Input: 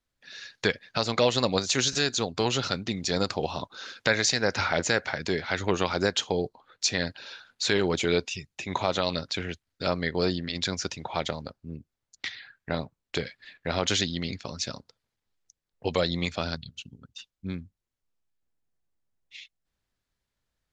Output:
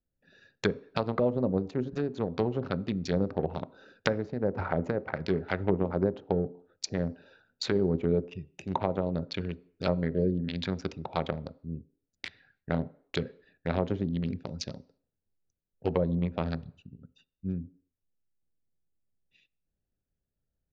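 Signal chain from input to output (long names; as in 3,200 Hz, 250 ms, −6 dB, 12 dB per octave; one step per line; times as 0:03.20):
adaptive Wiener filter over 41 samples
healed spectral selection 0:10.13–0:10.39, 630–1,500 Hz after
treble cut that deepens with the level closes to 510 Hz, closed at −22.5 dBFS
on a send at −17 dB: dynamic equaliser 260 Hz, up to +6 dB, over −40 dBFS, Q 0.86 + convolution reverb RT60 0.55 s, pre-delay 3 ms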